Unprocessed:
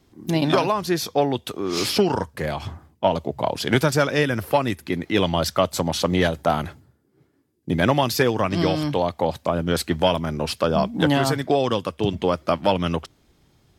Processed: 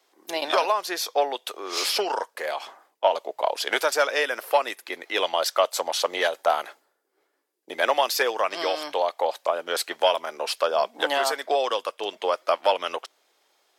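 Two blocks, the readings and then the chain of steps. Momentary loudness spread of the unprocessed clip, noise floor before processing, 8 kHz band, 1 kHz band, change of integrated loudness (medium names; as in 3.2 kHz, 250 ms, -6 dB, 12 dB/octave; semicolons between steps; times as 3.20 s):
7 LU, -63 dBFS, 0.0 dB, 0.0 dB, -3.0 dB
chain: high-pass 500 Hz 24 dB/octave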